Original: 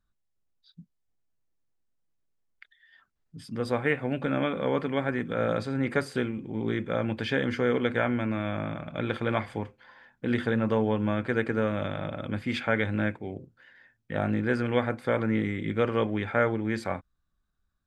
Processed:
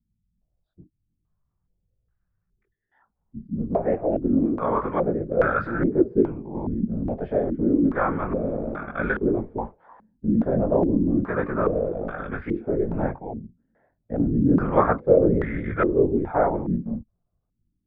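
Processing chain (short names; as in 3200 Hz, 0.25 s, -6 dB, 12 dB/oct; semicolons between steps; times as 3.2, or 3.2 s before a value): whisperiser; chorus voices 6, 1.4 Hz, delay 20 ms, depth 3 ms; stepped low-pass 2.4 Hz 220–1500 Hz; gain +3.5 dB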